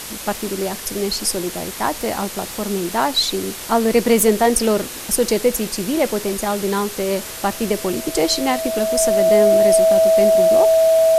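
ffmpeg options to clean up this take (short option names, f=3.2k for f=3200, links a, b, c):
-af "bandreject=f=650:w=30,afwtdn=0.032"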